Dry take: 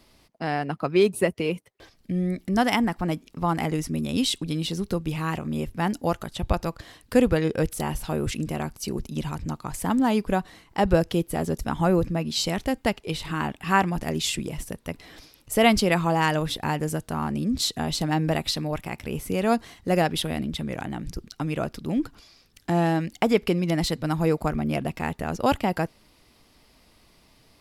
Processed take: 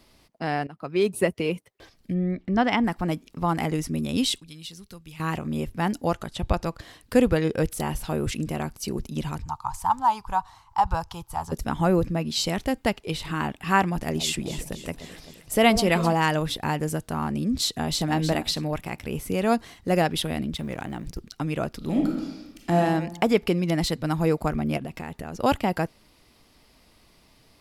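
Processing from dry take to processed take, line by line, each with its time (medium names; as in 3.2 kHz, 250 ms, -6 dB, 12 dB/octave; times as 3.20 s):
0.67–1.21 s: fade in, from -18 dB
2.13–2.83 s: low-pass 2 kHz -> 4 kHz
4.40–5.20 s: amplifier tone stack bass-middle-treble 5-5-5
6.04–6.75 s: low-pass 11 kHz
9.42–11.52 s: FFT filter 110 Hz 0 dB, 210 Hz -19 dB, 430 Hz -21 dB, 610 Hz -14 dB, 890 Hz +12 dB, 1.3 kHz +1 dB, 1.9 kHz -11 dB, 5.9 kHz -2 dB, 10 kHz -7 dB
13.99–16.13 s: echo whose repeats swap between lows and highs 130 ms, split 1.1 kHz, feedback 76%, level -11 dB
17.60–18.11 s: echo throw 310 ms, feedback 20%, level -6.5 dB
20.55–21.19 s: companding laws mixed up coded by A
21.77–22.77 s: reverb throw, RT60 1.1 s, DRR -0.5 dB
24.77–25.38 s: compression 10:1, threshold -29 dBFS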